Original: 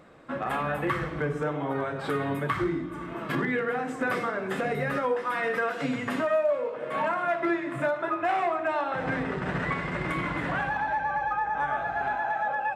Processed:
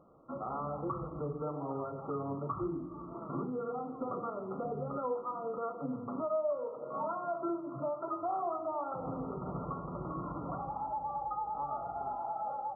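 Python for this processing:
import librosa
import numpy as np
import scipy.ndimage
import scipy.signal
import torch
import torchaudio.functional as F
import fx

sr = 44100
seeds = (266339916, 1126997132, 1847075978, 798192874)

y = fx.brickwall_lowpass(x, sr, high_hz=1400.0)
y = F.gain(torch.from_numpy(y), -8.0).numpy()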